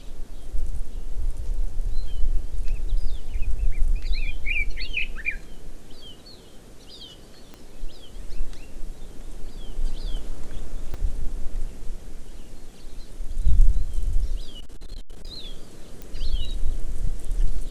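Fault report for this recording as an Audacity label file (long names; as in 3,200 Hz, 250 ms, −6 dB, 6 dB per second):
7.540000	7.540000	click −25 dBFS
10.940000	10.940000	drop-out 4.8 ms
14.560000	15.290000	clipping −28.5 dBFS
16.020000	16.020000	click −21 dBFS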